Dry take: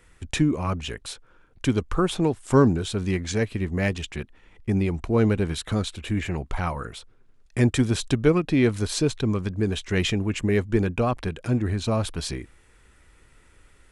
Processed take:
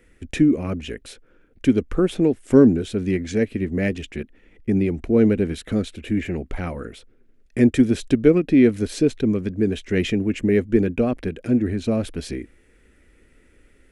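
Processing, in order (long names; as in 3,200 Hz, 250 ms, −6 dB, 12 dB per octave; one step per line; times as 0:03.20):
octave-band graphic EQ 125/250/500/1,000/2,000/4,000/8,000 Hz −5/+8/+5/−12/+4/−5/−5 dB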